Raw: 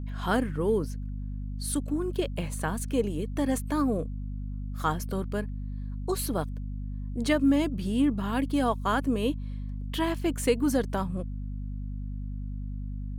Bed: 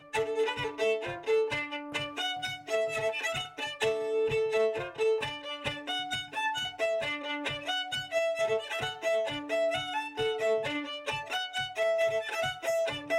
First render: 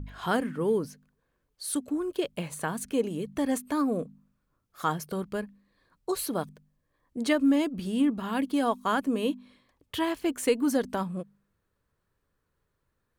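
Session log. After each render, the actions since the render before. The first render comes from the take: de-hum 50 Hz, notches 5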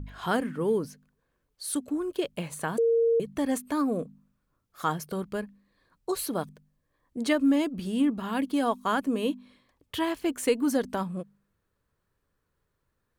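2.78–3.2 bleep 461 Hz -19.5 dBFS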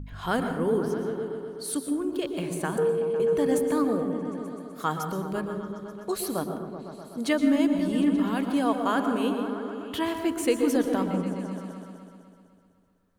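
repeats that get brighter 0.126 s, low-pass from 200 Hz, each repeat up 1 oct, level -3 dB; plate-style reverb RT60 0.81 s, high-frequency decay 0.6×, pre-delay 0.105 s, DRR 7 dB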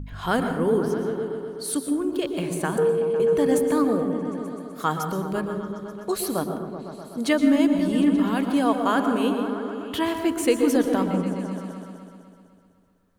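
gain +3.5 dB

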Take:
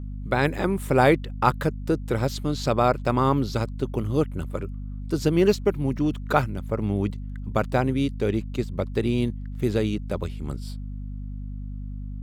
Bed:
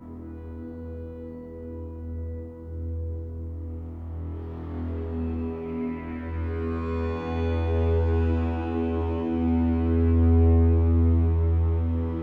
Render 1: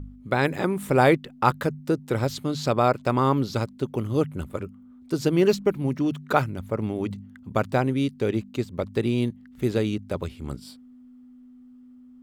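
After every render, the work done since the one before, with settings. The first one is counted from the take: de-hum 50 Hz, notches 4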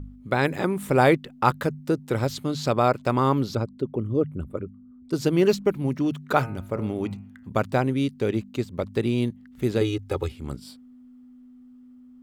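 3.55–5.13 formant sharpening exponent 1.5; 6.22–7.49 de-hum 113.7 Hz, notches 25; 9.81–10.32 comb 2.4 ms, depth 95%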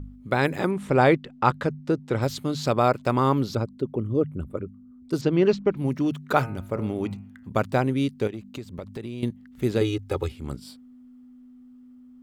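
0.71–2.22 air absorption 72 m; 5.21–5.77 air absorption 150 m; 8.27–9.23 compressor, threshold -31 dBFS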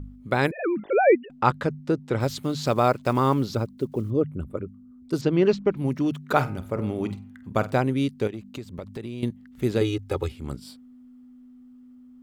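0.51–1.3 sine-wave speech; 2.2–4.12 block floating point 7-bit; 6.23–7.75 flutter echo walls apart 8.2 m, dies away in 0.21 s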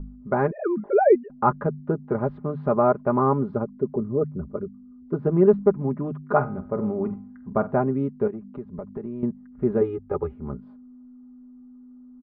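LPF 1300 Hz 24 dB/oct; comb 4.9 ms, depth 65%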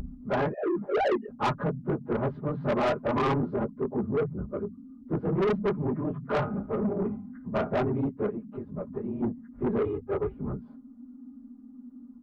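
phase scrambler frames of 50 ms; soft clip -22 dBFS, distortion -7 dB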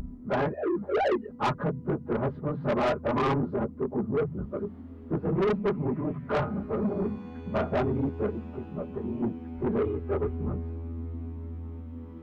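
add bed -16 dB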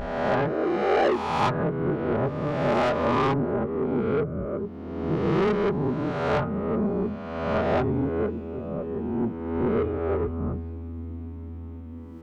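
spectral swells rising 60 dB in 1.40 s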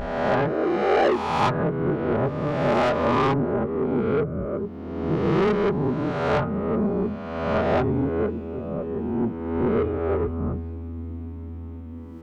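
gain +2 dB

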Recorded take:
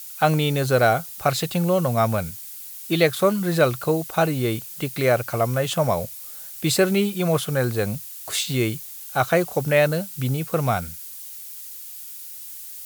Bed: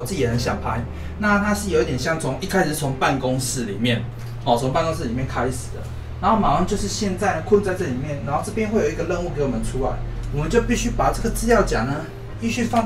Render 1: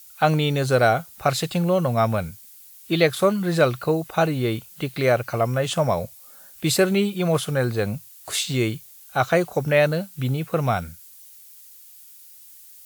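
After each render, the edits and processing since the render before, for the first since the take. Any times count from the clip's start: noise print and reduce 9 dB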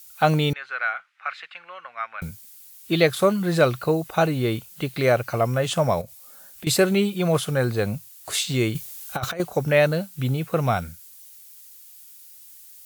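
0.53–2.22 Butterworth band-pass 1800 Hz, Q 1.4; 6.01–6.67 compressor, threshold -34 dBFS; 8.75–9.4 negative-ratio compressor -25 dBFS, ratio -0.5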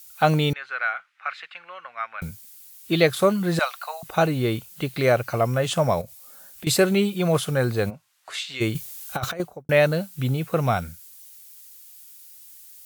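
3.59–4.03 steep high-pass 680 Hz 48 dB/oct; 7.89–8.6 band-pass 720 Hz -> 2700 Hz, Q 0.95; 9.28–9.69 studio fade out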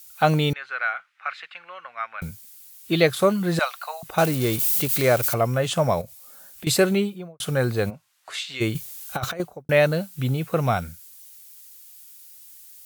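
4.18–5.34 switching spikes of -19.5 dBFS; 6.86–7.4 studio fade out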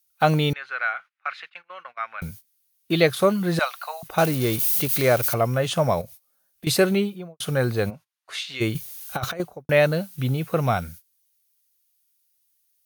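notch 7600 Hz, Q 6.4; gate -41 dBFS, range -22 dB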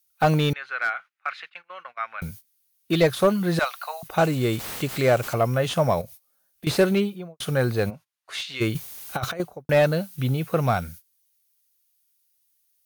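slew limiter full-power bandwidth 200 Hz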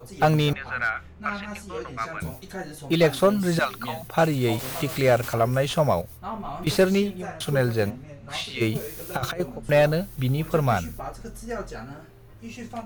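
add bed -16 dB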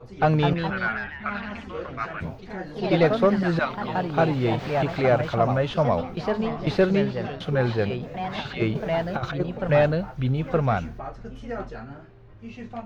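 echoes that change speed 0.23 s, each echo +2 st, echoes 3, each echo -6 dB; air absorption 220 m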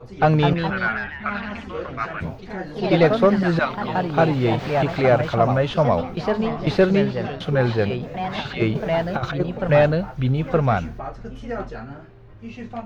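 gain +3.5 dB

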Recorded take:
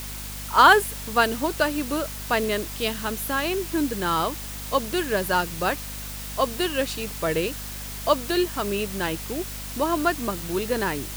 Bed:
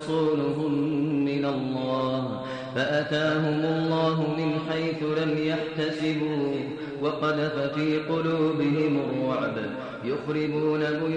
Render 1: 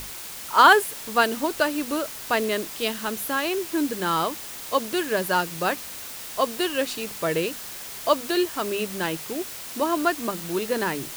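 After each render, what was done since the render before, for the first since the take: notches 50/100/150/200/250 Hz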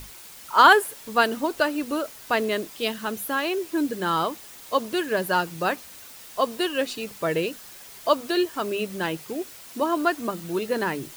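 denoiser 8 dB, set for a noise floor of -37 dBFS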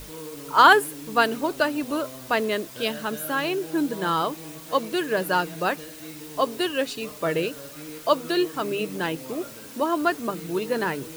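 add bed -15 dB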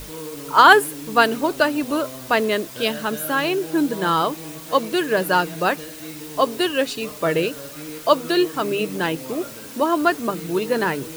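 gain +4.5 dB; limiter -1 dBFS, peak gain reduction 2.5 dB

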